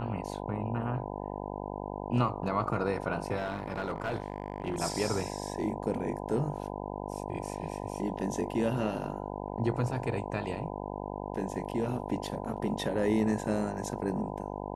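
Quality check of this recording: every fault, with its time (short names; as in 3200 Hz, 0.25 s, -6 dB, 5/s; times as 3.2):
buzz 50 Hz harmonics 20 -38 dBFS
3.36–4.8 clipped -27.5 dBFS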